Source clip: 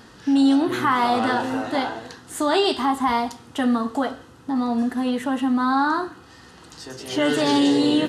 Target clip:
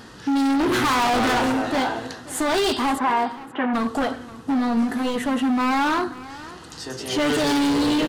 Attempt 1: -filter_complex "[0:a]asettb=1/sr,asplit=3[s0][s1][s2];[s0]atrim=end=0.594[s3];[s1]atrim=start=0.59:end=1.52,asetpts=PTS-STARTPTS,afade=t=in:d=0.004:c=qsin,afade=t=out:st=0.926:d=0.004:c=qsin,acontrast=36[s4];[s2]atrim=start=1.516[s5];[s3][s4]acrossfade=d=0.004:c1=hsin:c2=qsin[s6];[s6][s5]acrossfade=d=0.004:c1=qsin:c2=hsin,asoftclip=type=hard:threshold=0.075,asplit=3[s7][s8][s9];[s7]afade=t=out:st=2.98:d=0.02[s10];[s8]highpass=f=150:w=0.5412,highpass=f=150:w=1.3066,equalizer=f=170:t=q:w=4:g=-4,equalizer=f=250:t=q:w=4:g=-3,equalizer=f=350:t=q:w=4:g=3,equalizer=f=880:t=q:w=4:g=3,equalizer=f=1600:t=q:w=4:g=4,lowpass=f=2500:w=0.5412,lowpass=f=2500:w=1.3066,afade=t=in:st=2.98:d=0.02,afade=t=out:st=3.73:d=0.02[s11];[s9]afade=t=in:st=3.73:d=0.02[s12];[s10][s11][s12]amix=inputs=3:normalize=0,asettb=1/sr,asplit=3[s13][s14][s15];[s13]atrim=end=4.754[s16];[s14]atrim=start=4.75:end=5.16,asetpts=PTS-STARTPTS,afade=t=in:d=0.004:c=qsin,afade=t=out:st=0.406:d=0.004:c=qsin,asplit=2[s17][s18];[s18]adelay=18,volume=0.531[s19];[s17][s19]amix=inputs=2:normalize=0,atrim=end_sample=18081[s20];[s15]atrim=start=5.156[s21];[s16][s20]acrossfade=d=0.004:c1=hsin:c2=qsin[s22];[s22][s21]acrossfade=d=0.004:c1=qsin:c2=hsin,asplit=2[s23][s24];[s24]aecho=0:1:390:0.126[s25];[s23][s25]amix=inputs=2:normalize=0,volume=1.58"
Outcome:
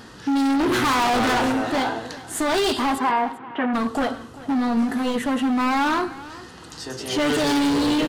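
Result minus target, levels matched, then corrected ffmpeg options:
echo 140 ms early
-filter_complex "[0:a]asettb=1/sr,asplit=3[s0][s1][s2];[s0]atrim=end=0.594[s3];[s1]atrim=start=0.59:end=1.52,asetpts=PTS-STARTPTS,afade=t=in:d=0.004:c=qsin,afade=t=out:st=0.926:d=0.004:c=qsin,acontrast=36[s4];[s2]atrim=start=1.516[s5];[s3][s4]acrossfade=d=0.004:c1=hsin:c2=qsin[s6];[s6][s5]acrossfade=d=0.004:c1=qsin:c2=hsin,asoftclip=type=hard:threshold=0.075,asplit=3[s7][s8][s9];[s7]afade=t=out:st=2.98:d=0.02[s10];[s8]highpass=f=150:w=0.5412,highpass=f=150:w=1.3066,equalizer=f=170:t=q:w=4:g=-4,equalizer=f=250:t=q:w=4:g=-3,equalizer=f=350:t=q:w=4:g=3,equalizer=f=880:t=q:w=4:g=3,equalizer=f=1600:t=q:w=4:g=4,lowpass=f=2500:w=0.5412,lowpass=f=2500:w=1.3066,afade=t=in:st=2.98:d=0.02,afade=t=out:st=3.73:d=0.02[s11];[s9]afade=t=in:st=3.73:d=0.02[s12];[s10][s11][s12]amix=inputs=3:normalize=0,asettb=1/sr,asplit=3[s13][s14][s15];[s13]atrim=end=4.754[s16];[s14]atrim=start=4.75:end=5.16,asetpts=PTS-STARTPTS,afade=t=in:d=0.004:c=qsin,afade=t=out:st=0.406:d=0.004:c=qsin,asplit=2[s17][s18];[s18]adelay=18,volume=0.531[s19];[s17][s19]amix=inputs=2:normalize=0,atrim=end_sample=18081[s20];[s15]atrim=start=5.156[s21];[s16][s20]acrossfade=d=0.004:c1=hsin:c2=qsin[s22];[s22][s21]acrossfade=d=0.004:c1=qsin:c2=hsin,asplit=2[s23][s24];[s24]aecho=0:1:530:0.126[s25];[s23][s25]amix=inputs=2:normalize=0,volume=1.58"

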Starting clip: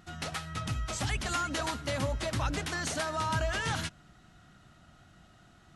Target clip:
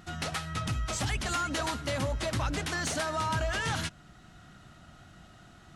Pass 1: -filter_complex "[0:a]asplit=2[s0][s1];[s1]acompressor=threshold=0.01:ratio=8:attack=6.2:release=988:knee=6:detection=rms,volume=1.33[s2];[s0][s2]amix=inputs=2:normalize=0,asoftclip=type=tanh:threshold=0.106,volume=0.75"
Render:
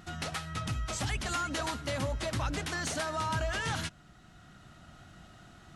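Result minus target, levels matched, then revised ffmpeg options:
compression: peak gain reduction +8.5 dB
-filter_complex "[0:a]asplit=2[s0][s1];[s1]acompressor=threshold=0.0299:ratio=8:attack=6.2:release=988:knee=6:detection=rms,volume=1.33[s2];[s0][s2]amix=inputs=2:normalize=0,asoftclip=type=tanh:threshold=0.106,volume=0.75"

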